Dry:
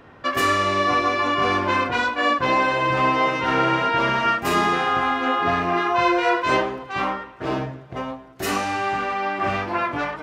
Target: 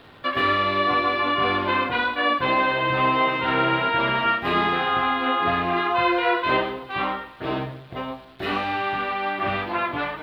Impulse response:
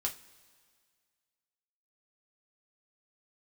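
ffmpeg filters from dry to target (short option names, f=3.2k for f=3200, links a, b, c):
-filter_complex "[0:a]asplit=2[a][b];[1:a]atrim=start_sample=2205,adelay=115[c];[b][c]afir=irnorm=-1:irlink=0,volume=-20dB[d];[a][d]amix=inputs=2:normalize=0,acrossover=split=3400[e][f];[f]acompressor=threshold=-43dB:ratio=4:attack=1:release=60[g];[e][g]amix=inputs=2:normalize=0,acrusher=bits=9:dc=4:mix=0:aa=0.000001,highshelf=f=4.9k:t=q:w=3:g=-9.5,volume=-2dB"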